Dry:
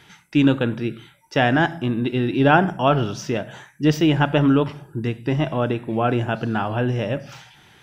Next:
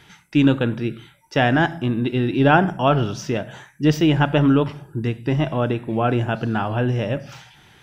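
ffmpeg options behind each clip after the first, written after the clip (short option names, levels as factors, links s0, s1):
-af "lowshelf=f=82:g=6"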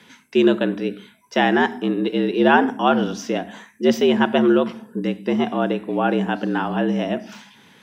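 -af "afreqshift=78"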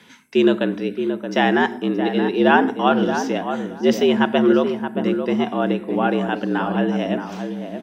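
-filter_complex "[0:a]asplit=2[s0][s1];[s1]adelay=624,lowpass=f=1400:p=1,volume=0.447,asplit=2[s2][s3];[s3]adelay=624,lowpass=f=1400:p=1,volume=0.18,asplit=2[s4][s5];[s5]adelay=624,lowpass=f=1400:p=1,volume=0.18[s6];[s0][s2][s4][s6]amix=inputs=4:normalize=0"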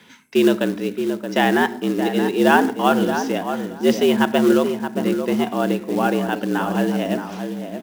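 -af "acrusher=bits=5:mode=log:mix=0:aa=0.000001"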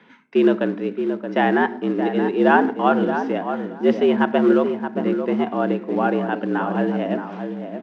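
-af "highpass=170,lowpass=2000"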